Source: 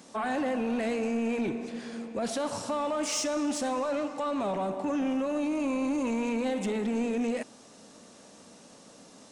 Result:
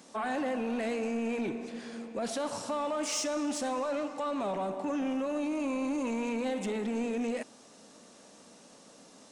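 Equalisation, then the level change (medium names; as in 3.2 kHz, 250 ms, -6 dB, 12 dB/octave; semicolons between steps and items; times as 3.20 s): peaking EQ 60 Hz -7.5 dB 2.3 oct; -2.0 dB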